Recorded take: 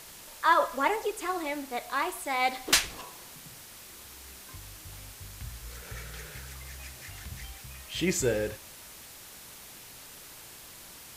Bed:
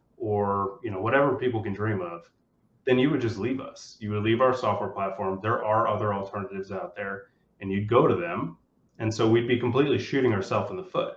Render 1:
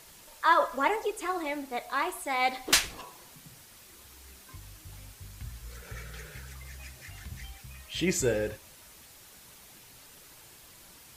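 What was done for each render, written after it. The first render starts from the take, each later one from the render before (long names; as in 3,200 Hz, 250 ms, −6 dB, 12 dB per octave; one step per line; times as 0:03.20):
broadband denoise 6 dB, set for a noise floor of −48 dBFS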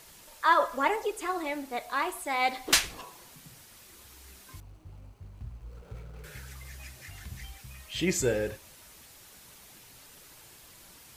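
0:04.60–0:06.24: running median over 25 samples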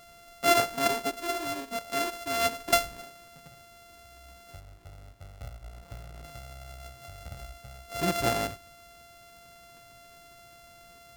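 samples sorted by size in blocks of 64 samples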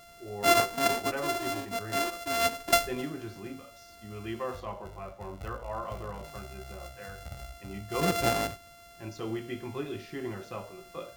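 mix in bed −13.5 dB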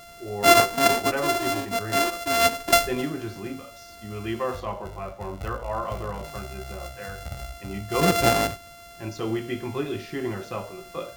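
level +7 dB
brickwall limiter −3 dBFS, peak gain reduction 2.5 dB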